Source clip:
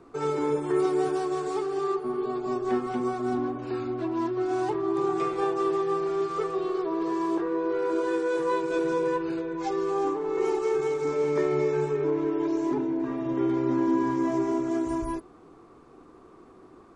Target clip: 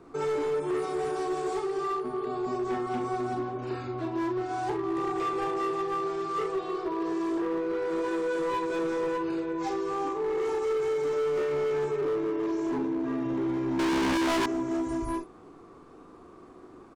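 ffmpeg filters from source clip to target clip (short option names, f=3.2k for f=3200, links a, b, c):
-filter_complex "[0:a]acompressor=threshold=-30dB:ratio=1.5,aecho=1:1:39|50|63:0.562|0.299|0.141,asettb=1/sr,asplit=3[a][b][c];[a]atrim=end=13.794[d];[b]atrim=start=13.79:end=14.46,asetpts=PTS-STARTPTS,afade=t=in:d=0.004:c=qsin,afade=t=out:st=0.666:d=0.004:c=qsin,asplit=2[e][f];[f]highpass=f=720:p=1,volume=36dB,asoftclip=type=tanh:threshold=-9dB[g];[e][g]amix=inputs=2:normalize=0,lowpass=f=2.2k:p=1,volume=-6dB[h];[c]atrim=start=14.456[i];[d][h]acrossfade=d=0.004:c1=hsin:c2=qsin[j];[j][i]acrossfade=d=0.004:c1=qsin:c2=hsin,asoftclip=type=hard:threshold=-25dB"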